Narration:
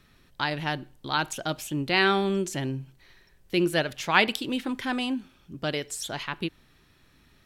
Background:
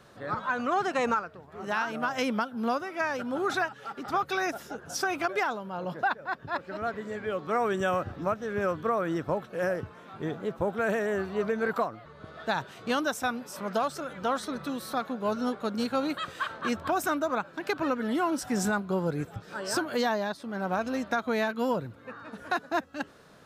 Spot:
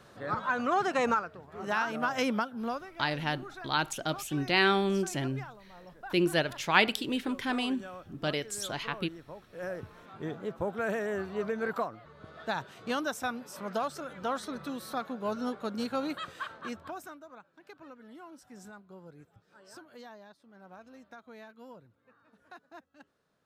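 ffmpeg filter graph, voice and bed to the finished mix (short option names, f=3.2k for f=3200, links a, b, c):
-filter_complex "[0:a]adelay=2600,volume=-2.5dB[a];[1:a]volume=12.5dB,afade=t=out:st=2.3:d=0.73:silence=0.149624,afade=t=in:st=9.4:d=0.59:silence=0.223872,afade=t=out:st=16.14:d=1.04:silence=0.133352[b];[a][b]amix=inputs=2:normalize=0"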